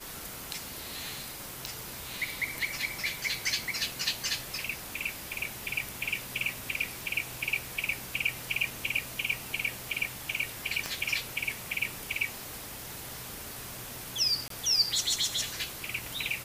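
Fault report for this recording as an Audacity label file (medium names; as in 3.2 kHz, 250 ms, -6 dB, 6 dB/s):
1.660000	1.660000	pop
10.860000	10.860000	pop -19 dBFS
14.480000	14.500000	dropout 23 ms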